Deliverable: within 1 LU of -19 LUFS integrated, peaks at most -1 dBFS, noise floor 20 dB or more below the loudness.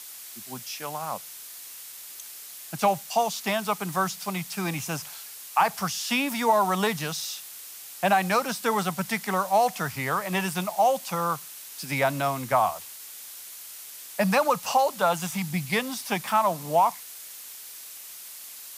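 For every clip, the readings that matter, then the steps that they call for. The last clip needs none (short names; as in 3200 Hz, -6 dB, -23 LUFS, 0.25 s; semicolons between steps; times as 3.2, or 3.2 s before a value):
noise floor -43 dBFS; noise floor target -46 dBFS; loudness -26.0 LUFS; peak -9.0 dBFS; loudness target -19.0 LUFS
-> noise print and reduce 6 dB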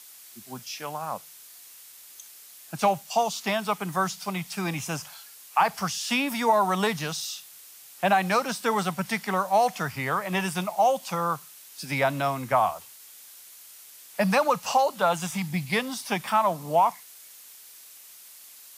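noise floor -49 dBFS; loudness -26.0 LUFS; peak -9.5 dBFS; loudness target -19.0 LUFS
-> gain +7 dB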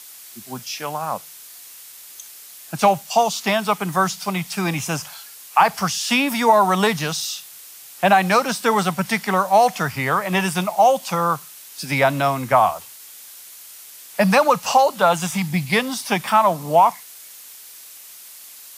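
loudness -19.0 LUFS; peak -2.5 dBFS; noise floor -42 dBFS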